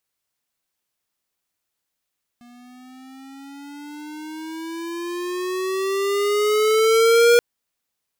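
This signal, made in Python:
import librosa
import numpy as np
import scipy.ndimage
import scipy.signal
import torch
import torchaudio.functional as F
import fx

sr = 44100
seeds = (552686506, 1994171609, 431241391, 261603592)

y = fx.riser_tone(sr, length_s=4.98, level_db=-12.5, wave='square', hz=239.0, rise_st=12.0, swell_db=34.0)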